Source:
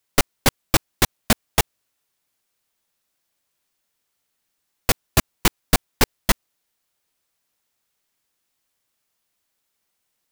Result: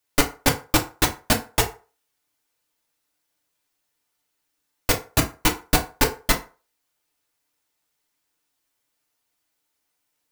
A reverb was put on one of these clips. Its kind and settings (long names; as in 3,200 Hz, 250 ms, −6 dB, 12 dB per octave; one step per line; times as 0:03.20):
feedback delay network reverb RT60 0.35 s, low-frequency decay 0.75×, high-frequency decay 0.65×, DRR 0.5 dB
level −3 dB